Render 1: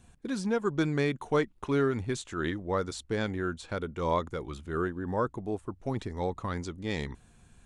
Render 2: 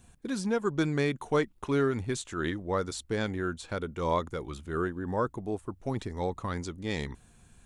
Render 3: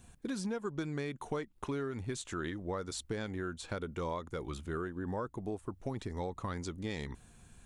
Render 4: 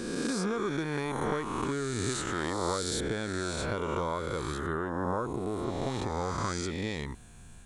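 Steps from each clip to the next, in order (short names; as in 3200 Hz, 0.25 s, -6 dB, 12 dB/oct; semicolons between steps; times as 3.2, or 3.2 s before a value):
high shelf 9200 Hz +8 dB
compressor 6:1, threshold -34 dBFS, peak gain reduction 12.5 dB
spectral swells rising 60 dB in 1.94 s; gain +2.5 dB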